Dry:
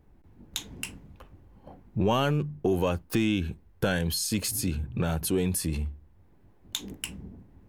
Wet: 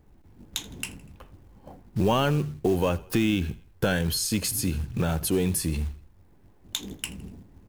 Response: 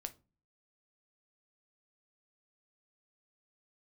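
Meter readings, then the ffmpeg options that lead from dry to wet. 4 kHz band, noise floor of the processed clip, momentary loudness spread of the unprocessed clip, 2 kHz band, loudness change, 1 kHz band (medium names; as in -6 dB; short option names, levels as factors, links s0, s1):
+2.0 dB, -56 dBFS, 12 LU, +2.0 dB, +2.0 dB, +2.0 dB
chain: -filter_complex "[0:a]acontrast=52,acrusher=bits=6:mode=log:mix=0:aa=0.000001,asplit=4[s0][s1][s2][s3];[s1]adelay=81,afreqshift=-33,volume=0.0944[s4];[s2]adelay=162,afreqshift=-66,volume=0.0437[s5];[s3]adelay=243,afreqshift=-99,volume=0.02[s6];[s0][s4][s5][s6]amix=inputs=4:normalize=0,volume=0.631"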